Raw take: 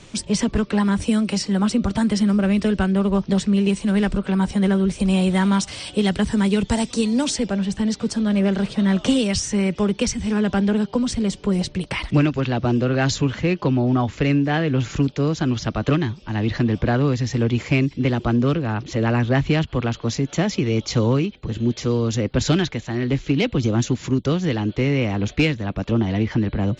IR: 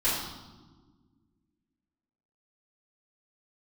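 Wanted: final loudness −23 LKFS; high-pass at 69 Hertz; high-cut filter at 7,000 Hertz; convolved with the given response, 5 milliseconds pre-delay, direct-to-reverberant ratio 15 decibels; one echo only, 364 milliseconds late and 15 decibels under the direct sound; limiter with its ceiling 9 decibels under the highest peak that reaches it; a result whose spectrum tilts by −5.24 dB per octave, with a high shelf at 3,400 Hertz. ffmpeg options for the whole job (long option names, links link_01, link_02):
-filter_complex "[0:a]highpass=69,lowpass=7000,highshelf=frequency=3400:gain=7.5,alimiter=limit=-15.5dB:level=0:latency=1,aecho=1:1:364:0.178,asplit=2[link_01][link_02];[1:a]atrim=start_sample=2205,adelay=5[link_03];[link_02][link_03]afir=irnorm=-1:irlink=0,volume=-26dB[link_04];[link_01][link_04]amix=inputs=2:normalize=0,volume=1dB"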